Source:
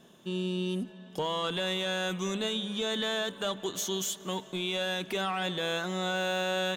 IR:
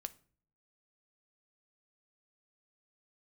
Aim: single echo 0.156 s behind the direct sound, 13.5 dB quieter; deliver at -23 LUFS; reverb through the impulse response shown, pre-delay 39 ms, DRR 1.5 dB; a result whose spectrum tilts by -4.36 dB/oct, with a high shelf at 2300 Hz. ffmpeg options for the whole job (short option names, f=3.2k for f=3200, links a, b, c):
-filter_complex "[0:a]highshelf=f=2.3k:g=-5.5,aecho=1:1:156:0.211,asplit=2[a][b];[1:a]atrim=start_sample=2205,adelay=39[c];[b][c]afir=irnorm=-1:irlink=0,volume=2dB[d];[a][d]amix=inputs=2:normalize=0,volume=7.5dB"